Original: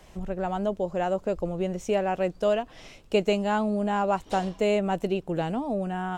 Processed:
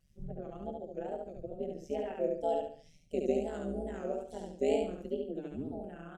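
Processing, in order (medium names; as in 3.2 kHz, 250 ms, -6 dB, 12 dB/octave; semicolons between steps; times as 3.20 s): expander on every frequency bin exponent 1.5; 2.17–4.77 s: ten-band graphic EQ 125 Hz +9 dB, 250 Hz -7 dB, 500 Hz +10 dB, 1 kHz -10 dB, 4 kHz -4 dB, 8 kHz +7 dB; harmonic-percussive split percussive -12 dB; bass shelf 270 Hz +4.5 dB; static phaser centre 380 Hz, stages 4; AM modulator 150 Hz, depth 80%; wow and flutter 150 cents; feedback delay 71 ms, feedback 34%, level -3 dB; trim -3 dB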